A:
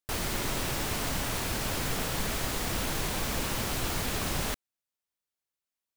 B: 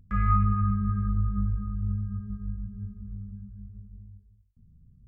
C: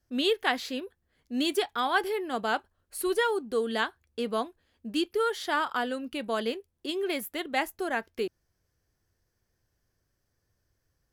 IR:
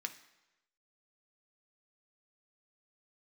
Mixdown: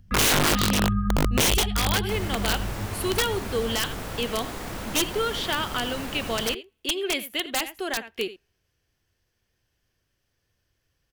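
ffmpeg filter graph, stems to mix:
-filter_complex "[0:a]acrossover=split=150|2100[link_01][link_02][link_03];[link_01]acompressor=threshold=-40dB:ratio=4[link_04];[link_02]acompressor=threshold=-37dB:ratio=4[link_05];[link_03]acompressor=threshold=-46dB:ratio=4[link_06];[link_04][link_05][link_06]amix=inputs=3:normalize=0,adelay=2000,volume=3dB[link_07];[1:a]volume=3dB,asplit=2[link_08][link_09];[link_09]volume=-5dB[link_10];[2:a]equalizer=frequency=2900:width=1.6:gain=11.5,volume=0.5dB,asplit=3[link_11][link_12][link_13];[link_12]volume=-24dB[link_14];[link_13]volume=-15dB[link_15];[3:a]atrim=start_sample=2205[link_16];[link_14][link_16]afir=irnorm=-1:irlink=0[link_17];[link_10][link_15]amix=inputs=2:normalize=0,aecho=0:1:84:1[link_18];[link_07][link_08][link_11][link_17][link_18]amix=inputs=5:normalize=0,acrossover=split=480|3000[link_19][link_20][link_21];[link_20]acompressor=threshold=-27dB:ratio=2.5[link_22];[link_19][link_22][link_21]amix=inputs=3:normalize=0,aeval=exprs='(mod(5.62*val(0)+1,2)-1)/5.62':channel_layout=same"

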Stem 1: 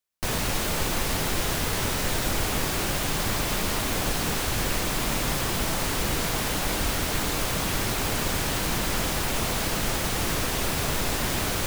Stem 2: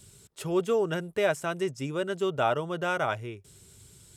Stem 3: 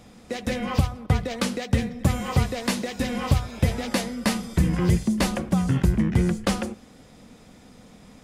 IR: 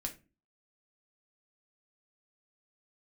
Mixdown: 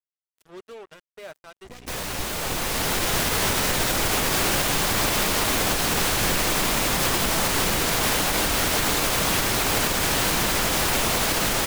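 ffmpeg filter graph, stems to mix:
-filter_complex "[0:a]dynaudnorm=framelen=470:gausssize=5:maxgain=11.5dB,alimiter=limit=-7.5dB:level=0:latency=1:release=59,aeval=exprs='val(0)+0.0126*(sin(2*PI*60*n/s)+sin(2*PI*2*60*n/s)/2+sin(2*PI*3*60*n/s)/3+sin(2*PI*4*60*n/s)/4+sin(2*PI*5*60*n/s)/5)':channel_layout=same,adelay=1650,volume=-3dB[link_01];[1:a]adynamicequalizer=threshold=0.00794:dfrequency=280:dqfactor=1.2:tfrequency=280:tqfactor=1.2:attack=5:release=100:ratio=0.375:range=2.5:mode=cutabove:tftype=bell,volume=-15.5dB,asplit=2[link_02][link_03];[link_03]volume=-11.5dB[link_04];[2:a]aeval=exprs='max(val(0),0)':channel_layout=same,adelay=1400,volume=-10dB,asplit=2[link_05][link_06];[link_06]volume=-10.5dB[link_07];[3:a]atrim=start_sample=2205[link_08];[link_04][link_07]amix=inputs=2:normalize=0[link_09];[link_09][link_08]afir=irnorm=-1:irlink=0[link_10];[link_01][link_02][link_05][link_10]amix=inputs=4:normalize=0,lowshelf=frequency=240:gain=-7,acrusher=bits=6:mix=0:aa=0.5"

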